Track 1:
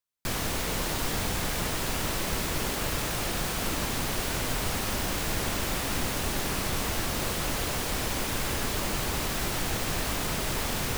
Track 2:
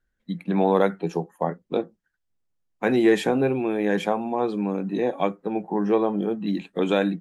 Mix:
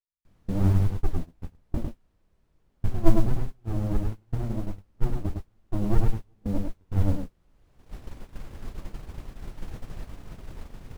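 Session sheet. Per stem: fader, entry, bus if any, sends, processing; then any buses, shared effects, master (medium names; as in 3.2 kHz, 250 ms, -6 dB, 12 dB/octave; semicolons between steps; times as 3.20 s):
-11.0 dB, 0.00 s, no send, echo send -14 dB, auto duck -12 dB, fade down 1.15 s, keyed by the second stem
+0.5 dB, 0.00 s, no send, echo send -4 dB, wah-wah 1.5 Hz 240–1600 Hz, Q 6.9; sliding maximum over 65 samples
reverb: none
echo: delay 103 ms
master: gate -38 dBFS, range -25 dB; modulation noise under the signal 14 dB; tilt EQ -3 dB/octave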